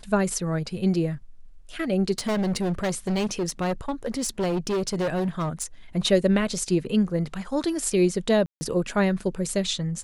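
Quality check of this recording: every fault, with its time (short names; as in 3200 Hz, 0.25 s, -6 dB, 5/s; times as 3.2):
2.18–5.64 clipped -22 dBFS
8.46–8.61 gap 0.15 s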